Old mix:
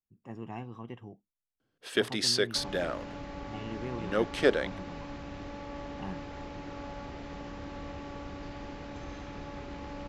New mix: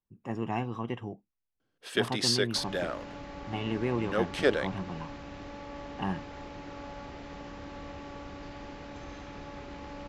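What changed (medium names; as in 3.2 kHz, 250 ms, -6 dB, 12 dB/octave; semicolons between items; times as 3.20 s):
speech +10.0 dB; master: add bass shelf 350 Hz -3 dB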